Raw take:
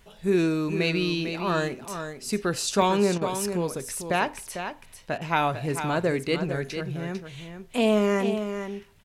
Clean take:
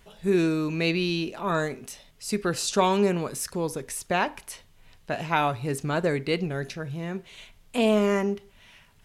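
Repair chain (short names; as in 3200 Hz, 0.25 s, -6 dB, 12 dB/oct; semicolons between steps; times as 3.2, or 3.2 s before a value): interpolate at 2.82, 1.1 ms; interpolate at 3.18/5.18, 32 ms; inverse comb 0.449 s -8.5 dB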